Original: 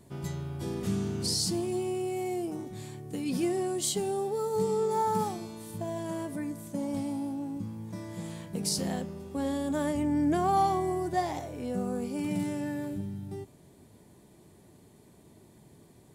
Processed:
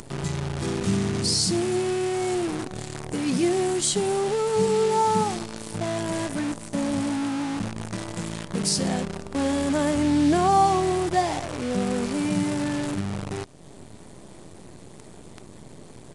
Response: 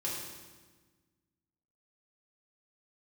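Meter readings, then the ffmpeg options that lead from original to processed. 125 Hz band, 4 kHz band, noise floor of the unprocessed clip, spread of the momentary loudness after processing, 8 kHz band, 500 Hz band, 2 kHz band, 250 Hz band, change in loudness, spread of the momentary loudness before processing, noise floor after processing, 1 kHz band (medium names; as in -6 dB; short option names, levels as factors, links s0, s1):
+6.5 dB, +8.0 dB, -57 dBFS, 11 LU, +7.5 dB, +6.5 dB, +11.0 dB, +6.5 dB, +6.5 dB, 12 LU, -45 dBFS, +6.5 dB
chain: -af "acompressor=mode=upward:threshold=0.0141:ratio=2.5,acrusher=bits=7:dc=4:mix=0:aa=0.000001,aresample=22050,aresample=44100,volume=2.11"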